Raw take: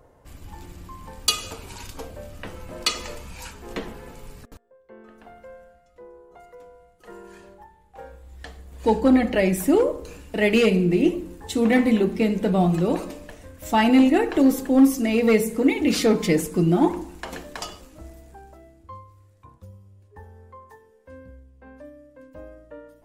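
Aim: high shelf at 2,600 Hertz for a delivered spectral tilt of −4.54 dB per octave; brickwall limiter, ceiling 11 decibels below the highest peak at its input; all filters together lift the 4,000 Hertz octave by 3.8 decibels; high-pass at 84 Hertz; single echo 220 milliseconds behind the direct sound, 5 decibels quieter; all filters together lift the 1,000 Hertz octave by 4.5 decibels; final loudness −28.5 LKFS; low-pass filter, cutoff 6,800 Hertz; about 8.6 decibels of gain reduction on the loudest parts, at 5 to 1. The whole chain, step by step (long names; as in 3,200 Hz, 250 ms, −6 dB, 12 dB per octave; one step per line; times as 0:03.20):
high-pass filter 84 Hz
low-pass filter 6,800 Hz
parametric band 1,000 Hz +6 dB
high-shelf EQ 2,600 Hz −4 dB
parametric band 4,000 Hz +8.5 dB
downward compressor 5 to 1, threshold −21 dBFS
brickwall limiter −17 dBFS
single-tap delay 220 ms −5 dB
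level −1 dB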